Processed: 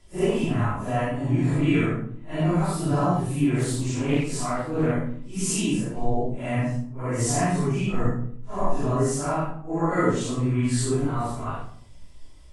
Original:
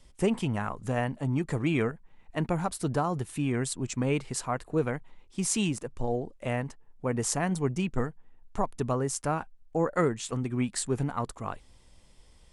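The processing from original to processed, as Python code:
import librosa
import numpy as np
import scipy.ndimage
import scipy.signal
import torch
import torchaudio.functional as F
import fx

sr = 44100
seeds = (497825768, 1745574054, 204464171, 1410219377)

y = fx.phase_scramble(x, sr, seeds[0], window_ms=200)
y = fx.room_shoebox(y, sr, seeds[1], volume_m3=670.0, walls='furnished', distance_m=3.0)
y = fx.doppler_dist(y, sr, depth_ms=0.26, at=(3.58, 4.94))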